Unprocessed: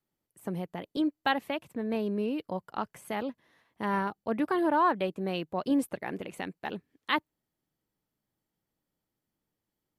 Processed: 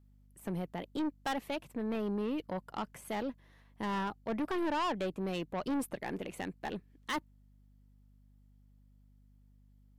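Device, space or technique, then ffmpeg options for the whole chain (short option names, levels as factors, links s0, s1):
valve amplifier with mains hum: -af "aeval=exprs='(tanh(31.6*val(0)+0.25)-tanh(0.25))/31.6':c=same,aeval=exprs='val(0)+0.000891*(sin(2*PI*50*n/s)+sin(2*PI*2*50*n/s)/2+sin(2*PI*3*50*n/s)/3+sin(2*PI*4*50*n/s)/4+sin(2*PI*5*50*n/s)/5)':c=same"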